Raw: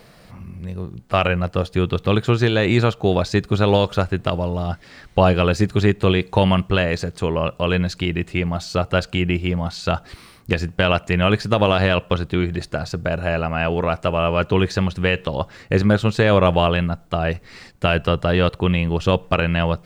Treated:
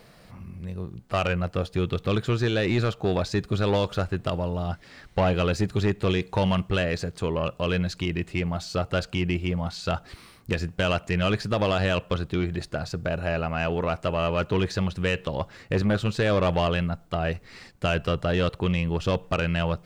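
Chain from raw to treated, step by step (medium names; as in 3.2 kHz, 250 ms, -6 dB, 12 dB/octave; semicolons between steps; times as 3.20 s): saturation -11 dBFS, distortion -14 dB; trim -4.5 dB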